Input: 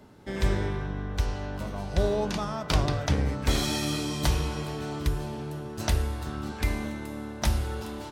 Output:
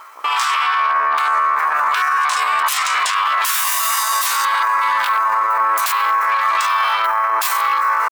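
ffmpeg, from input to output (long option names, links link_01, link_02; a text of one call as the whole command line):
ffmpeg -i in.wav -filter_complex "[0:a]aemphasis=mode=production:type=riaa,acrossover=split=1900[link_01][link_02];[link_01]acontrast=84[link_03];[link_03][link_02]amix=inputs=2:normalize=0,afwtdn=0.0178,afftfilt=real='re*lt(hypot(re,im),0.1)':imag='im*lt(hypot(re,im),0.1)':win_size=1024:overlap=0.75,acompressor=threshold=-33dB:ratio=8,asoftclip=type=tanh:threshold=-28dB,asetrate=66075,aresample=44100,atempo=0.66742,highpass=frequency=1100:width_type=q:width=6.7,alimiter=level_in=30dB:limit=-1dB:release=50:level=0:latency=1,volume=-8dB" out.wav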